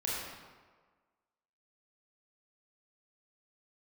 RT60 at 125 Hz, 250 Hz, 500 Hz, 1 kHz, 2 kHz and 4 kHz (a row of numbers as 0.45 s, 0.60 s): 1.3 s, 1.4 s, 1.5 s, 1.5 s, 1.2 s, 0.95 s